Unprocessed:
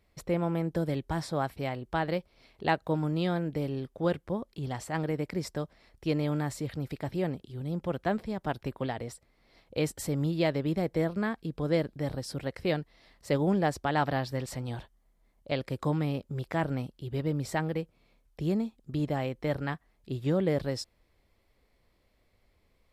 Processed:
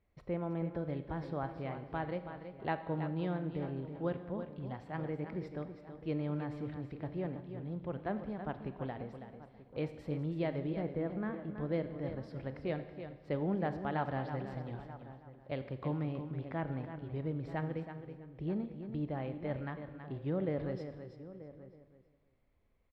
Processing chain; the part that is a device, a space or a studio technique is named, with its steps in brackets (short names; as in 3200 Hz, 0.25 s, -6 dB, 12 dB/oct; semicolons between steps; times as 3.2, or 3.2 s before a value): 10.81–11.5 air absorption 210 m; shout across a valley (air absorption 370 m; outdoor echo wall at 160 m, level -15 dB); feedback echo 0.326 s, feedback 19%, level -9.5 dB; Schroeder reverb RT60 1.2 s, combs from 30 ms, DRR 11 dB; gain -7 dB